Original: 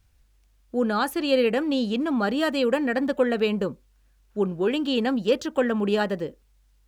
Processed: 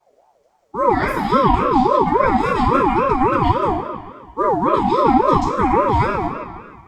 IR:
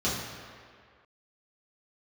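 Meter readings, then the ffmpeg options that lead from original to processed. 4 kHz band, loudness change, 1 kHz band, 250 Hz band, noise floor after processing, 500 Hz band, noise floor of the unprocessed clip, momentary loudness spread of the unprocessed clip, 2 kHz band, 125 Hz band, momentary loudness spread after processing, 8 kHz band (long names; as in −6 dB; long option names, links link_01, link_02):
−3.5 dB, +7.5 dB, +17.5 dB, +4.0 dB, −60 dBFS, +4.5 dB, −62 dBFS, 6 LU, +4.0 dB, +13.0 dB, 11 LU, can't be measured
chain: -filter_complex "[0:a]equalizer=frequency=3300:width=3:gain=-10.5,acrossover=split=150|6000[link_01][link_02][link_03];[link_01]acrusher=bits=3:mode=log:mix=0:aa=0.000001[link_04];[link_04][link_02][link_03]amix=inputs=3:normalize=0[link_05];[1:a]atrim=start_sample=2205,asetrate=48510,aresample=44100[link_06];[link_05][link_06]afir=irnorm=-1:irlink=0,aeval=exprs='val(0)*sin(2*PI*660*n/s+660*0.25/3.6*sin(2*PI*3.6*n/s))':channel_layout=same,volume=-4dB"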